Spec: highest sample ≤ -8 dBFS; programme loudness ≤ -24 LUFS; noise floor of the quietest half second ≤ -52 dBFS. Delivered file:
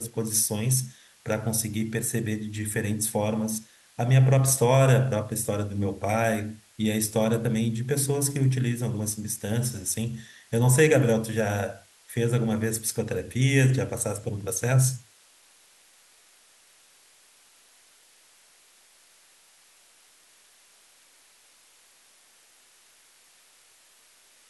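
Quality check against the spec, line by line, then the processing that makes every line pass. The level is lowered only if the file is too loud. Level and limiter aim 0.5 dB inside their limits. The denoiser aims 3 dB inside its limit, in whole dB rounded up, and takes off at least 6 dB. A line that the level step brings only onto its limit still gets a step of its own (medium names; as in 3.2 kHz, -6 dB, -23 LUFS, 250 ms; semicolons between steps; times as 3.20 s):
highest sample -7.0 dBFS: fail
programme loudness -25.0 LUFS: pass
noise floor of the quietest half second -58 dBFS: pass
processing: peak limiter -8.5 dBFS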